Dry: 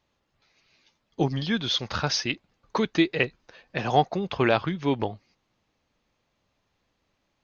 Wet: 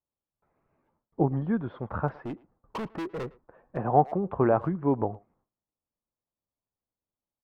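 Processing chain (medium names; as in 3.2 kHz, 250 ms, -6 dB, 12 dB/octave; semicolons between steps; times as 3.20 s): gate with hold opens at -58 dBFS; low-pass 1.2 kHz 24 dB/octave; 2.08–3.77 s: overload inside the chain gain 31 dB; speakerphone echo 110 ms, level -22 dB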